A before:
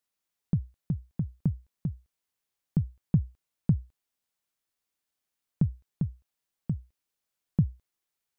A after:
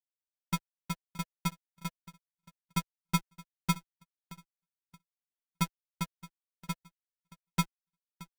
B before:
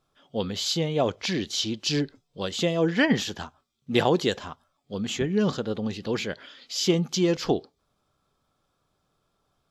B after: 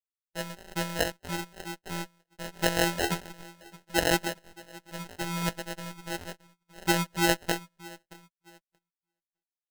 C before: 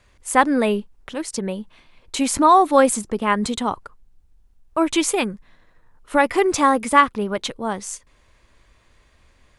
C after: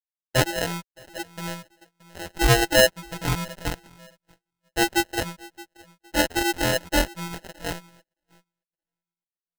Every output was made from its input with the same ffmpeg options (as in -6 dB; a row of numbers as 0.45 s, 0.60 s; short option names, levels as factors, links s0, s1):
-filter_complex "[0:a]highpass=43,afftfilt=real='hypot(re,im)*cos(PI*b)':imag='0':win_size=1024:overlap=0.75,aemphasis=mode=reproduction:type=cd,aresample=11025,aeval=exprs='sgn(val(0))*max(abs(val(0))-0.00841,0)':c=same,aresample=44100,afftdn=nr=32:nf=-40,asplit=2[s0][s1];[s1]adelay=620,lowpass=f=990:p=1,volume=0.106,asplit=2[s2][s3];[s3]adelay=620,lowpass=f=990:p=1,volume=0.35,asplit=2[s4][s5];[s5]adelay=620,lowpass=f=990:p=1,volume=0.35[s6];[s0][s2][s4][s6]amix=inputs=4:normalize=0,acrossover=split=590|1400[s7][s8][s9];[s8]acrusher=bits=4:mix=0:aa=0.000001[s10];[s7][s10][s9]amix=inputs=3:normalize=0,asuperstop=centerf=4000:order=4:qfactor=2,agate=range=0.0501:threshold=0.00224:ratio=16:detection=peak,acrusher=samples=38:mix=1:aa=0.000001,equalizer=f=200:w=0.35:g=-9.5,volume=1.78"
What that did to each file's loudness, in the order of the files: -4.5 LU, -4.0 LU, -4.5 LU